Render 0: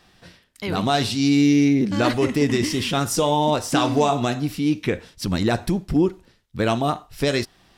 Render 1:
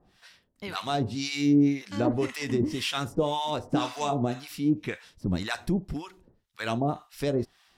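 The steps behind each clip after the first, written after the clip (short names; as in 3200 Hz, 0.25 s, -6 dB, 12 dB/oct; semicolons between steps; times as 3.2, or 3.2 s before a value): harmonic tremolo 1.9 Hz, depth 100%, crossover 860 Hz; gain -2.5 dB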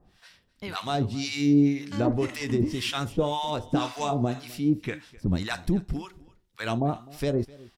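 low shelf 99 Hz +8 dB; echo 0.256 s -22 dB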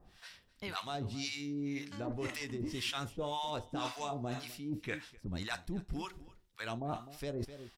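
reverse; compressor 6:1, threshold -34 dBFS, peak gain reduction 17 dB; reverse; bell 190 Hz -4.5 dB 3 oct; gain +1 dB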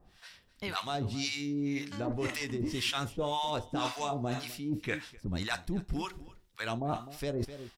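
AGC gain up to 5 dB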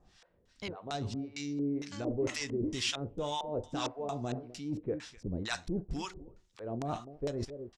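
LFO low-pass square 2.2 Hz 480–6800 Hz; gain -3 dB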